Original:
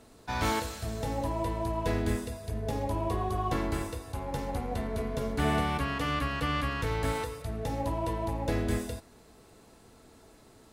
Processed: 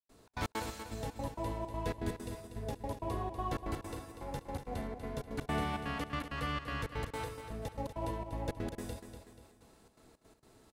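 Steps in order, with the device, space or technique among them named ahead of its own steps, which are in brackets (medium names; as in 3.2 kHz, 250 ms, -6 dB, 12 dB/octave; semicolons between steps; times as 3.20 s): trance gate with a delay (trance gate ".xx.x.xxx" 164 bpm -60 dB; feedback delay 242 ms, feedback 45%, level -9 dB); trim -6 dB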